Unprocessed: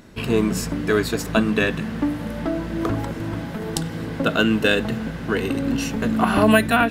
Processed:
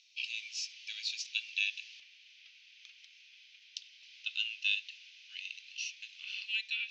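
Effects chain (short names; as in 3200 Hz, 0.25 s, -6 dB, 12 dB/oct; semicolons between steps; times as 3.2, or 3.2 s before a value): Chebyshev band-pass 2400–6200 Hz, order 4; high shelf 3300 Hz +2.5 dB, from 2 s -10.5 dB, from 4.03 s -4 dB; gain -4.5 dB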